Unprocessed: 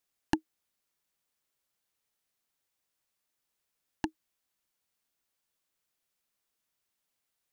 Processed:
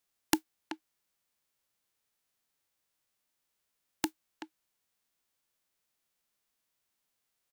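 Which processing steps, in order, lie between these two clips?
spectral envelope flattened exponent 0.3
far-end echo of a speakerphone 380 ms, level −10 dB
level +1 dB

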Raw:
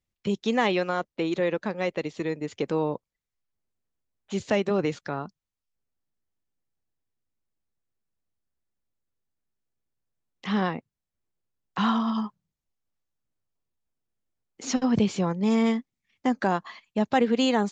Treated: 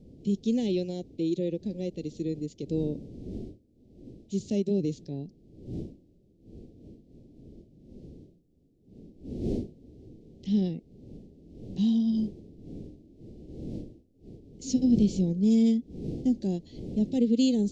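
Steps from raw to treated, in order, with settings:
wind on the microphone 440 Hz −39 dBFS
harmonic and percussive parts rebalanced harmonic +7 dB
Chebyshev band-stop filter 320–4,800 Hz, order 2
level −5.5 dB

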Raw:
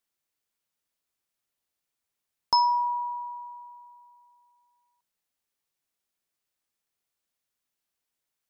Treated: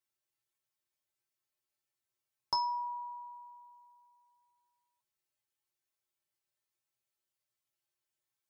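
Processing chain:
tuned comb filter 120 Hz, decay 0.19 s, harmonics odd, mix 90%
level +4.5 dB

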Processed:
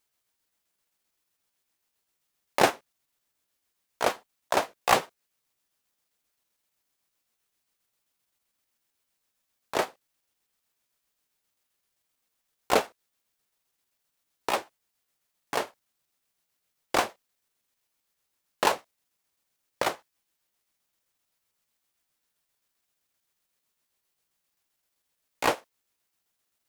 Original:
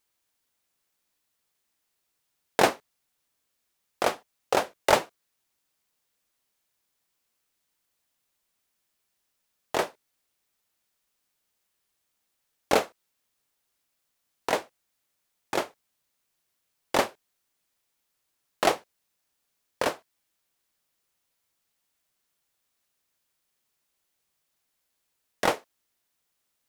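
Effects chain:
pitch shifter gated in a rhythm +4.5 semitones, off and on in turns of 65 ms

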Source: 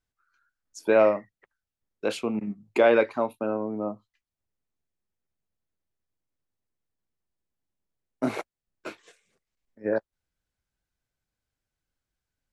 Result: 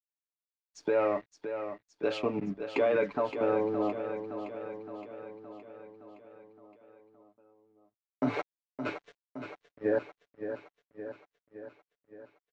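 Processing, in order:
comb filter 6.9 ms, depth 71%
in parallel at +1.5 dB: downward compressor, threshold −32 dBFS, peak gain reduction 19 dB
on the sum: brickwall limiter −14.5 dBFS, peak gain reduction 9.5 dB
dead-zone distortion −48 dBFS
high-frequency loss of the air 180 metres
repeating echo 567 ms, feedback 60%, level −9 dB
level −3.5 dB

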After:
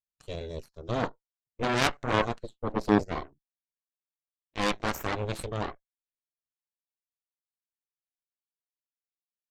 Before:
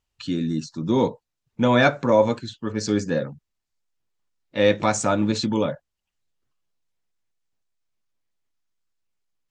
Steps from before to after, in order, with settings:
0:02.43–0:03.03: graphic EQ with 15 bands 250 Hz +12 dB, 630 Hz +9 dB, 1,600 Hz −10 dB, 6,300 Hz −10 dB
harmonic generator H 3 −10 dB, 8 −19 dB, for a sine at −4 dBFS
level −3 dB

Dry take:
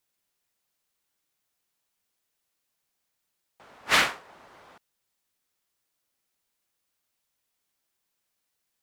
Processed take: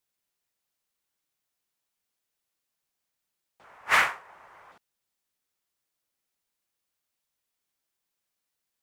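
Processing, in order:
0:03.64–0:04.72: octave-band graphic EQ 250/1,000/2,000/4,000 Hz −8/+6/+6/−7 dB
level −4 dB

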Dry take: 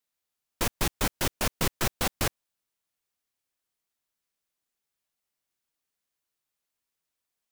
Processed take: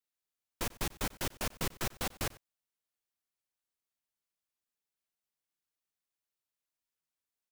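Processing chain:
slap from a distant wall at 16 metres, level −20 dB
level −8 dB

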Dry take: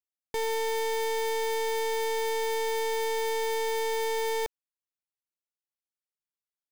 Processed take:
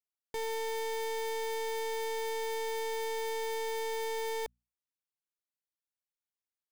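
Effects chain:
mains-hum notches 60/120/180/240 Hz
level −6 dB

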